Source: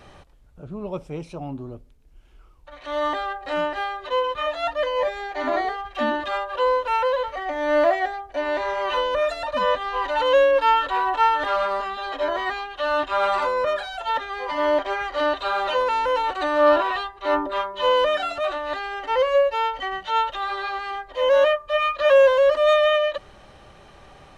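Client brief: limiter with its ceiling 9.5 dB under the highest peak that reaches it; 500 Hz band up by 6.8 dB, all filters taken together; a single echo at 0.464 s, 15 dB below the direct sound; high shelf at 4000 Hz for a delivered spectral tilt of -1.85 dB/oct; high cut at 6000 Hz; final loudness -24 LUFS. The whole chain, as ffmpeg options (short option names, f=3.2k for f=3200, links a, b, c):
-af "lowpass=6k,equalizer=f=500:t=o:g=8,highshelf=f=4k:g=-8.5,alimiter=limit=-10dB:level=0:latency=1,aecho=1:1:464:0.178,volume=-4.5dB"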